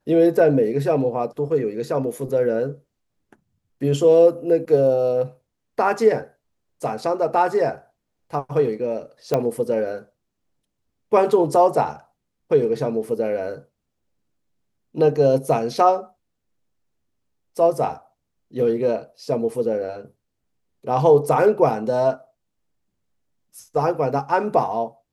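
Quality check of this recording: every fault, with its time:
9.34 s: pop -8 dBFS

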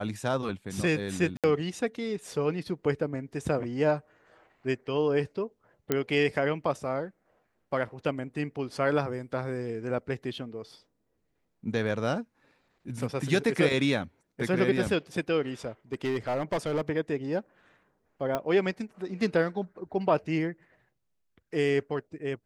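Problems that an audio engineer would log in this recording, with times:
1.37–1.44 s: dropout 67 ms
5.92 s: pop -11 dBFS
15.93–16.82 s: clipped -24 dBFS
18.35 s: pop -15 dBFS

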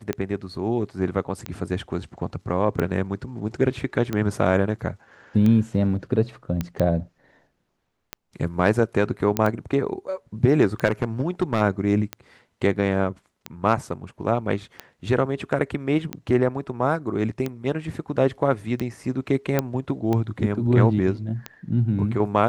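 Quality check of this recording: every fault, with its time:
tick 45 rpm -13 dBFS
6.61 s: pop -13 dBFS
9.37 s: pop -7 dBFS
10.85–11.61 s: clipped -15 dBFS
19.59 s: pop -7 dBFS

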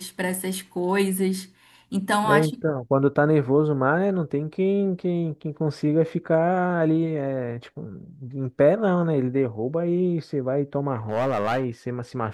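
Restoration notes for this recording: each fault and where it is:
11.09–11.65 s: clipped -19 dBFS

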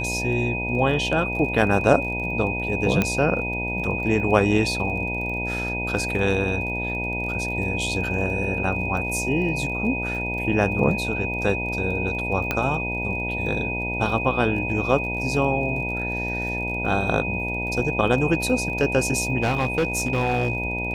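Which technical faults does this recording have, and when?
buzz 60 Hz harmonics 16 -30 dBFS
crackle 27 per s -33 dBFS
whine 2.5 kHz -27 dBFS
3.02 s: pop -7 dBFS
12.51 s: pop -8 dBFS
19.42–20.57 s: clipped -17.5 dBFS

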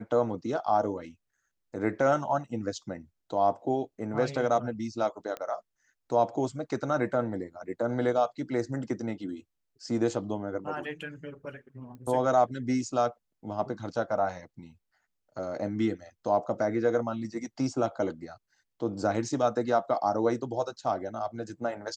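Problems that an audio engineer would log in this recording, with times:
5.37 s: pop -22 dBFS
11.95 s: pop -35 dBFS

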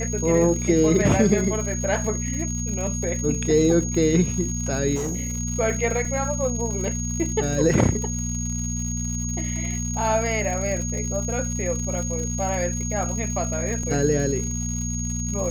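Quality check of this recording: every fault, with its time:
crackle 160 per s -31 dBFS
hum 60 Hz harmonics 4 -28 dBFS
whine 6.6 kHz -30 dBFS
4.95–5.39 s: clipped -23 dBFS
6.05 s: dropout 2.9 ms
13.83 s: dropout 4 ms

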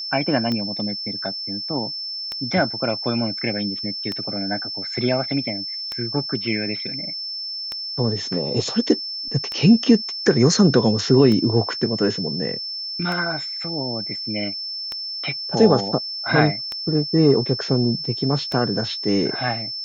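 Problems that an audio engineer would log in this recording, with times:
tick 33 1/3 rpm -13 dBFS
whine 5.3 kHz -27 dBFS

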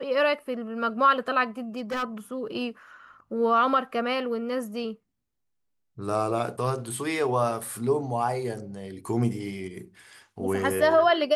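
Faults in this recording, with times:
1.77–2.04 s: clipped -26 dBFS

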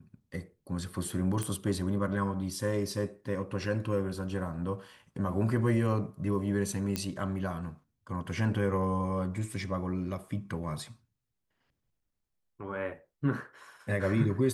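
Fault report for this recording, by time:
1.43 s: pop -20 dBFS
6.96 s: pop -16 dBFS

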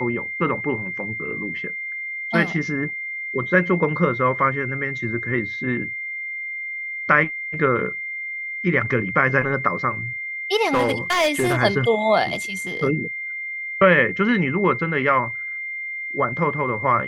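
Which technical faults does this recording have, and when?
whine 2.1 kHz -27 dBFS
10.73–11.58 s: clipped -14.5 dBFS

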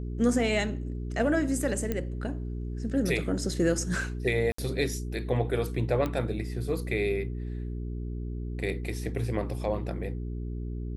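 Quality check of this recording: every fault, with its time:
hum 60 Hz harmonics 7 -34 dBFS
1.92 s: pop -16 dBFS
4.52–4.58 s: dropout 64 ms
6.06 s: pop -18 dBFS

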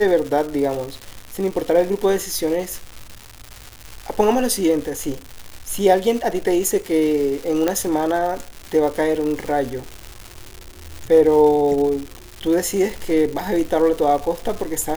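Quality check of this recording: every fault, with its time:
crackle 330 per s -26 dBFS
7.68 s: pop -6 dBFS

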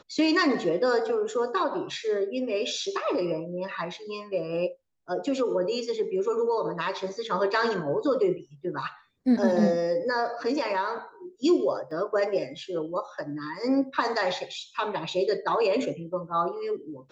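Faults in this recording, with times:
11.91 s: dropout 2.7 ms

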